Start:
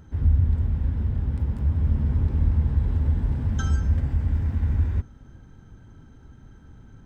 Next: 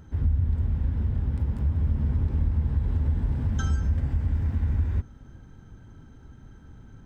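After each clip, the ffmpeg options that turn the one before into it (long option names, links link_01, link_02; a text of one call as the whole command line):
ffmpeg -i in.wav -af "acompressor=threshold=-21dB:ratio=2.5" out.wav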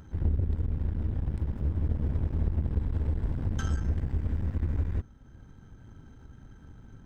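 ffmpeg -i in.wav -af "acompressor=mode=upward:threshold=-36dB:ratio=2.5,aeval=exprs='0.211*(cos(1*acos(clip(val(0)/0.211,-1,1)))-cos(1*PI/2))+0.0266*(cos(3*acos(clip(val(0)/0.211,-1,1)))-cos(3*PI/2))+0.015*(cos(8*acos(clip(val(0)/0.211,-1,1)))-cos(8*PI/2))':channel_layout=same,volume=-2dB" out.wav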